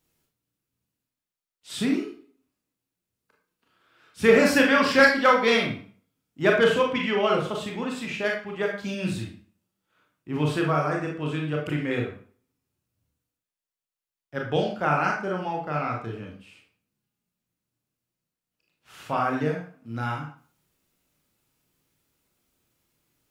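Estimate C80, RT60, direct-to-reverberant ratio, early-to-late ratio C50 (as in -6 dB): 9.5 dB, 0.45 s, -1.0 dB, 5.0 dB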